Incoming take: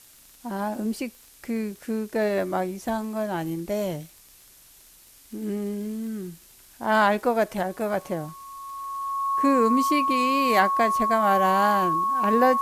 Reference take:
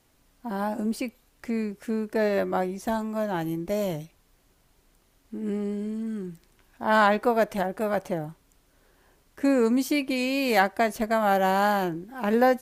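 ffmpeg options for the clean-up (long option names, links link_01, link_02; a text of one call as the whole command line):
ffmpeg -i in.wav -af "adeclick=threshold=4,bandreject=frequency=1100:width=30,afftdn=noise_reduction=11:noise_floor=-52" out.wav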